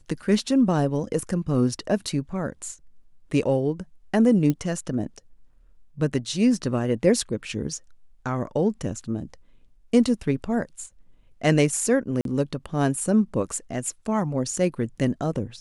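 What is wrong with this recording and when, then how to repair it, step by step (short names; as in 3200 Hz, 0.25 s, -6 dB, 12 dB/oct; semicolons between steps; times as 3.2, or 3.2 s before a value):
4.5 pop -12 dBFS
12.21–12.25 gap 42 ms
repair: de-click; interpolate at 12.21, 42 ms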